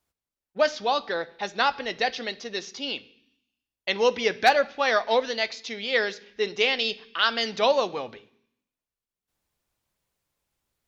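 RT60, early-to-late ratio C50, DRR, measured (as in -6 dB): 0.65 s, 19.5 dB, 11.0 dB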